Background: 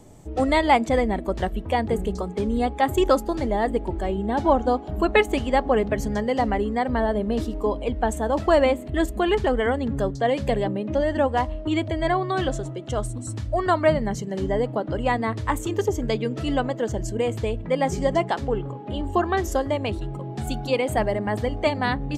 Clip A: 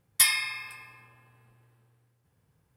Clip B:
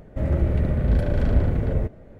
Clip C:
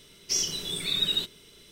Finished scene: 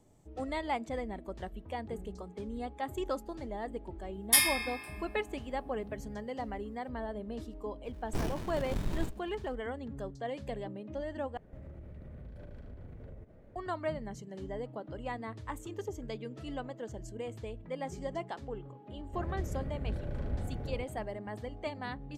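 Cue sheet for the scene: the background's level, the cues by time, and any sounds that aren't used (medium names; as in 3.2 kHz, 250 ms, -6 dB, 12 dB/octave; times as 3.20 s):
background -16 dB
4.13 s: add A -4 dB + spectral sustain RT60 0.35 s
7.84 s: add C -1 dB + sliding maximum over 65 samples
11.37 s: replace with B -11 dB + compression 16:1, threshold -32 dBFS
18.97 s: add B -16 dB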